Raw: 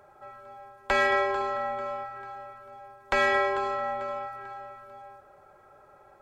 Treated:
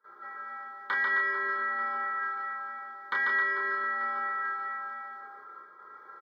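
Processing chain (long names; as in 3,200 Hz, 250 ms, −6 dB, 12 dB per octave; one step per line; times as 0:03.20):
noise gate with hold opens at −46 dBFS
high-pass filter 890 Hz 12 dB per octave
downward compressor 5 to 1, threshold −38 dBFS, peak gain reduction 14.5 dB
phaser with its sweep stopped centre 2,600 Hz, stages 6
double-tracking delay 29 ms −4 dB
loudspeakers that aren't time-aligned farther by 49 metres −3 dB, 91 metres −8 dB
convolution reverb RT60 0.15 s, pre-delay 3 ms, DRR −4.5 dB
level −4.5 dB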